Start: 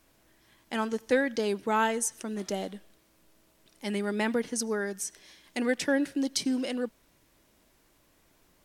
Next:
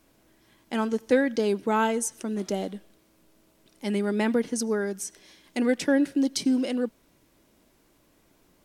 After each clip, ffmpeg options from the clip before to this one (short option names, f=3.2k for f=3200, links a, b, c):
-af "equalizer=f=270:w=0.57:g=5.5,bandreject=f=1.8k:w=26"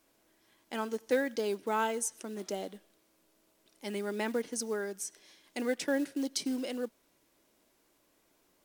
-af "acrusher=bits=7:mode=log:mix=0:aa=0.000001,bass=f=250:g=-10,treble=f=4k:g=2,volume=-6dB"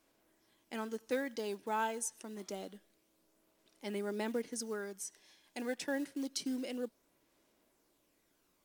-af "aphaser=in_gain=1:out_gain=1:delay=1.2:decay=0.28:speed=0.27:type=sinusoidal,volume=-5dB"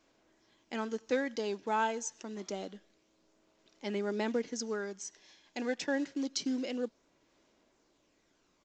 -af "aresample=16000,aresample=44100,volume=4dB"